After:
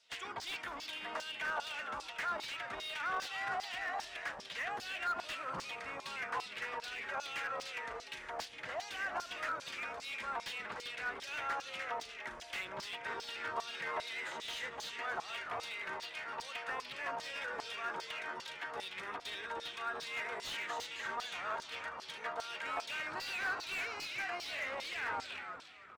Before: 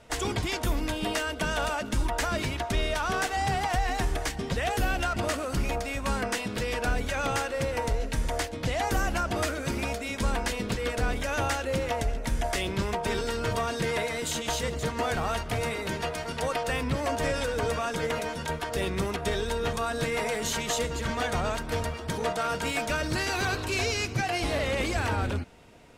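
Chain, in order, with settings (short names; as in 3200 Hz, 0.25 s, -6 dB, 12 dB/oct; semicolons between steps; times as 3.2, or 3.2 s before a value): 5.4–6.16 fifteen-band EQ 160 Hz +11 dB, 400 Hz +4 dB, 1000 Hz +5 dB; frequency-shifting echo 0.297 s, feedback 42%, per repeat -86 Hz, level -6 dB; LFO band-pass saw down 2.5 Hz 910–5200 Hz; slew limiter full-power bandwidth 47 Hz; gain -2 dB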